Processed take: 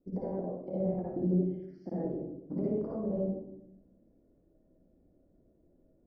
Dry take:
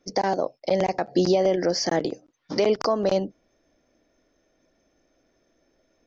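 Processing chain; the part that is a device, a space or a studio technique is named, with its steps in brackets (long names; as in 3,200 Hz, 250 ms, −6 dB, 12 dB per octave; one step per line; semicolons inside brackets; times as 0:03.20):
0:01.34–0:01.86: inverse Chebyshev high-pass filter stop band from 400 Hz, stop band 80 dB
television next door (downward compressor, threshold −29 dBFS, peak gain reduction 12.5 dB; low-pass filter 340 Hz 12 dB per octave; convolution reverb RT60 0.80 s, pre-delay 51 ms, DRR −6.5 dB)
level −3 dB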